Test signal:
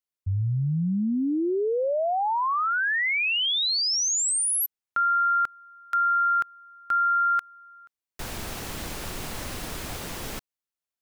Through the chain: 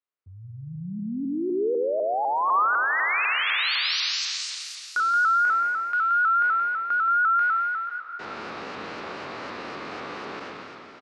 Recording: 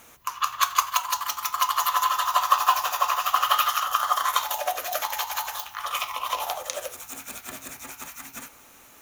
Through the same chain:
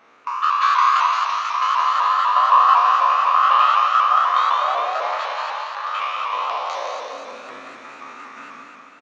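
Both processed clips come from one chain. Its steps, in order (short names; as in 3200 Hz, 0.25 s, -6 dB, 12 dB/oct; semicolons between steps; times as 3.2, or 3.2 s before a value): spectral trails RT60 2.65 s; in parallel at -8.5 dB: soft clip -6 dBFS; on the sum: speaker cabinet 250–4000 Hz, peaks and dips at 430 Hz +3 dB, 1200 Hz +6 dB, 3300 Hz -7 dB; on a send: feedback echo 0.174 s, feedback 46%, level -7 dB; on the sum: shaped vibrato saw up 4 Hz, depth 100 cents; gain -5.5 dB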